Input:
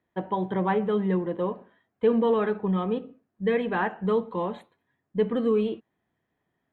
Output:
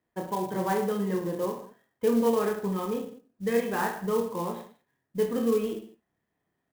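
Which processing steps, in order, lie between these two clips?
reverse bouncing-ball echo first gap 30 ms, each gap 1.15×, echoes 5; sampling jitter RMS 0.032 ms; trim -4 dB

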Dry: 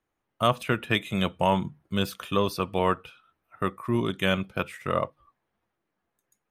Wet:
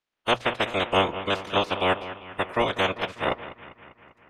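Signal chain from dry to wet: spectral peaks clipped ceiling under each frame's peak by 27 dB; time stretch by phase-locked vocoder 0.66×; low-pass 4.4 kHz 12 dB/octave; hum notches 60/120 Hz; on a send: bucket-brigade echo 198 ms, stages 4096, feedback 65%, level -13 dB; on the sum: dynamic bell 570 Hz, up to +8 dB, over -43 dBFS, Q 0.99

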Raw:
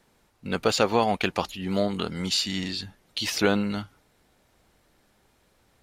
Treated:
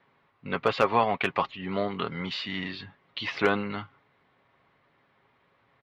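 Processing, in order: cabinet simulation 100–3400 Hz, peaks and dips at 280 Hz -4 dB, 1.1 kHz +9 dB, 2 kHz +6 dB; hard clipper -6.5 dBFS, distortion -29 dB; comb 7.3 ms, depth 37%; trim -2.5 dB

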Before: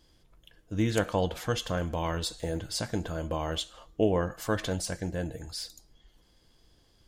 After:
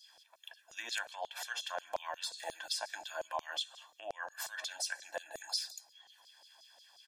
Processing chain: high-pass 310 Hz 24 dB/octave; comb 1.2 ms, depth 95%; compression 6:1, threshold -39 dBFS, peak gain reduction 16.5 dB; LFO high-pass saw down 5.6 Hz 560–5400 Hz; trim +1.5 dB

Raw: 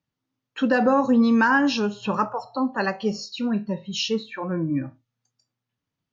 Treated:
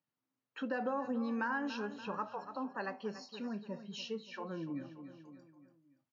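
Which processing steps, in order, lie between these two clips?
high-pass 130 Hz; bass shelf 280 Hz -7.5 dB; on a send: feedback delay 287 ms, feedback 43%, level -14 dB; on the sum: compression 1.5:1, threshold -47 dBFS, peak gain reduction 11 dB; treble shelf 3.6 kHz -11 dB; band-stop 3.5 kHz, Q 12; trim -4 dB

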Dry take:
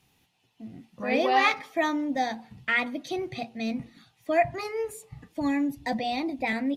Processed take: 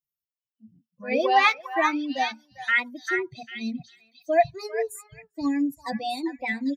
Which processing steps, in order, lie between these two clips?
expander on every frequency bin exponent 2; bass shelf 130 Hz -10 dB; repeats whose band climbs or falls 398 ms, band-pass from 1.4 kHz, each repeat 1.4 oct, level -3 dB; trim +5.5 dB

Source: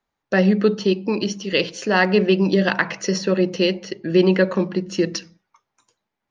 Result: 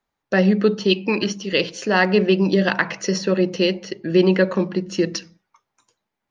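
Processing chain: 0.89–1.31 s: peaking EQ 3.6 kHz -> 1.3 kHz +14.5 dB 0.95 oct

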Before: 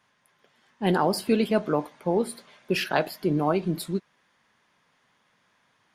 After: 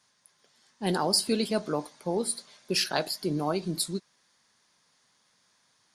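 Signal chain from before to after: high-order bell 6.5 kHz +14 dB; trim -5 dB

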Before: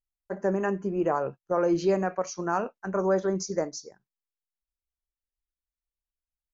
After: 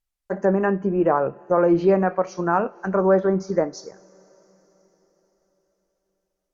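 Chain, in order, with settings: two-slope reverb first 0.39 s, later 4.8 s, from -18 dB, DRR 18.5 dB; low-pass that closes with the level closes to 2.2 kHz, closed at -25.5 dBFS; trim +7 dB

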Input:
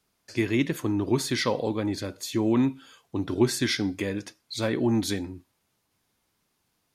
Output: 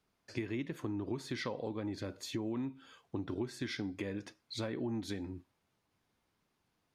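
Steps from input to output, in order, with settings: low-pass 2.8 kHz 6 dB/octave; compression 6:1, threshold -32 dBFS, peak gain reduction 15.5 dB; trim -3 dB

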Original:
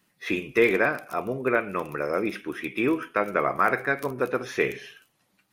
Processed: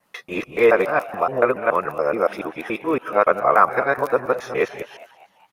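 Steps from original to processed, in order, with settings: time reversed locally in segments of 142 ms; high-order bell 790 Hz +9.5 dB; frequency-shifting echo 204 ms, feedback 51%, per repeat +110 Hz, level -18.5 dB

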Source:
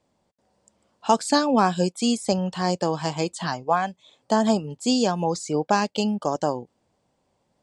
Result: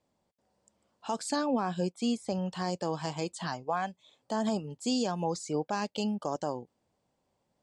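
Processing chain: 1.36–2.34 s: treble shelf 4.8 kHz -10 dB; peak limiter -13 dBFS, peak gain reduction 8.5 dB; trim -7 dB

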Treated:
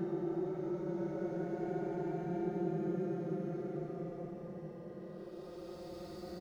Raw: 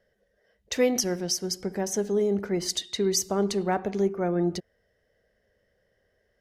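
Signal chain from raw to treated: median filter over 15 samples; feedback delay 219 ms, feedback 58%, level -11 dB; Paulstretch 41×, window 0.05 s, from 5.07 s; trim +6 dB

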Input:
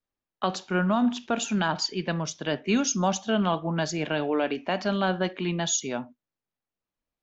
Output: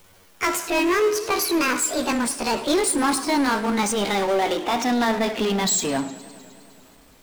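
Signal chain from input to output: pitch bend over the whole clip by +11 st ending unshifted; power-law waveshaper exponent 0.5; modulated delay 103 ms, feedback 79%, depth 122 cents, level -19.5 dB

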